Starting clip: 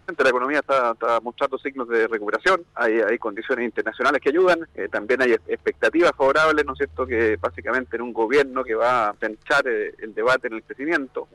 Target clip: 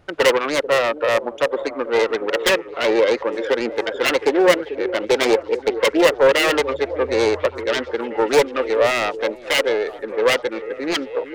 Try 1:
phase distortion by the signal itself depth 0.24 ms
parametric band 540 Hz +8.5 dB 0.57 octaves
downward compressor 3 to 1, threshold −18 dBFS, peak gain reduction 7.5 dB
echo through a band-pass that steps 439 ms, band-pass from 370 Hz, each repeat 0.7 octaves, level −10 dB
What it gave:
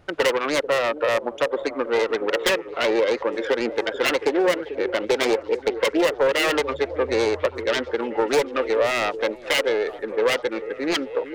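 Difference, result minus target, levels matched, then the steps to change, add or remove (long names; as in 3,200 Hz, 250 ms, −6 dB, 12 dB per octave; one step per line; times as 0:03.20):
downward compressor: peak gain reduction +7.5 dB
remove: downward compressor 3 to 1, threshold −18 dBFS, peak gain reduction 7.5 dB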